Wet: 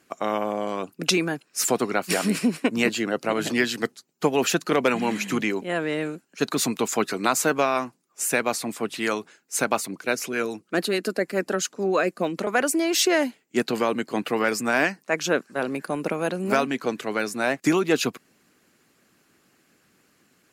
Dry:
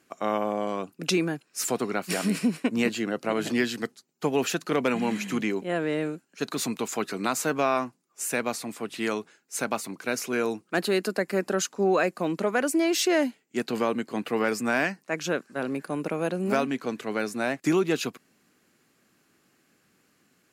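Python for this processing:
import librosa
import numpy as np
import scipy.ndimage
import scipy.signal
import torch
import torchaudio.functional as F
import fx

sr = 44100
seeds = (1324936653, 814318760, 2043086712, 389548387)

y = fx.hpss(x, sr, part='percussive', gain_db=6)
y = fx.rotary(y, sr, hz=7.0, at=(9.86, 12.47))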